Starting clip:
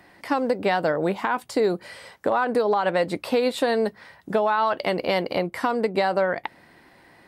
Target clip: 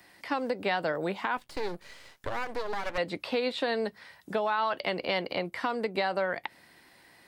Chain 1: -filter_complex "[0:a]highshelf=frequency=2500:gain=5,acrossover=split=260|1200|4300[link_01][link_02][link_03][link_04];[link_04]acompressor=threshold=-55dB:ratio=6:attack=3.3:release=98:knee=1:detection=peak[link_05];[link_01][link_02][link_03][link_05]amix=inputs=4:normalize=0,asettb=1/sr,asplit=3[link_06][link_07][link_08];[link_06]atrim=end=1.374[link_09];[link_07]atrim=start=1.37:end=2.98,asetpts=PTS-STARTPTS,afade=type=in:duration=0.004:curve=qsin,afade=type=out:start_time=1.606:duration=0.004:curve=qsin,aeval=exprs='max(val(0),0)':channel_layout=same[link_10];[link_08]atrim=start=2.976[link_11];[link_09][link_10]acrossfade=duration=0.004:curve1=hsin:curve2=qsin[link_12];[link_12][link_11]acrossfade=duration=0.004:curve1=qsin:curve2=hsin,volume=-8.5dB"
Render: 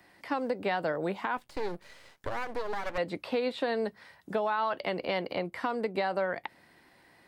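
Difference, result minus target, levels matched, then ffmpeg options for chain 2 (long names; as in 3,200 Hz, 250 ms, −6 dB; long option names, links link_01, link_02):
4,000 Hz band −4.0 dB
-filter_complex "[0:a]highshelf=frequency=2500:gain=13.5,acrossover=split=260|1200|4300[link_01][link_02][link_03][link_04];[link_04]acompressor=threshold=-55dB:ratio=6:attack=3.3:release=98:knee=1:detection=peak[link_05];[link_01][link_02][link_03][link_05]amix=inputs=4:normalize=0,asettb=1/sr,asplit=3[link_06][link_07][link_08];[link_06]atrim=end=1.374[link_09];[link_07]atrim=start=1.37:end=2.98,asetpts=PTS-STARTPTS,afade=type=in:duration=0.004:curve=qsin,afade=type=out:start_time=1.606:duration=0.004:curve=qsin,aeval=exprs='max(val(0),0)':channel_layout=same[link_10];[link_08]atrim=start=2.976[link_11];[link_09][link_10]acrossfade=duration=0.004:curve1=hsin:curve2=qsin[link_12];[link_12][link_11]acrossfade=duration=0.004:curve1=qsin:curve2=hsin,volume=-8.5dB"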